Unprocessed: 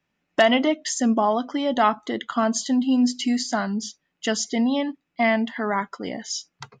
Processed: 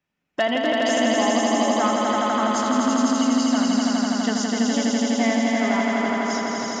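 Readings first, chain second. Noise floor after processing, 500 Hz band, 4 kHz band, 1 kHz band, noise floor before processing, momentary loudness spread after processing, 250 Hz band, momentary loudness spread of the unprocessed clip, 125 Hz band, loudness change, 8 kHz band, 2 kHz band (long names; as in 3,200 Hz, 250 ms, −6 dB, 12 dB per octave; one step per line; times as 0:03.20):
−77 dBFS, +2.0 dB, +2.5 dB, +2.5 dB, −77 dBFS, 4 LU, +3.0 dB, 11 LU, can't be measured, +2.5 dB, +2.0 dB, +2.0 dB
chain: echo that builds up and dies away 83 ms, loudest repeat 5, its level −3 dB
level −5 dB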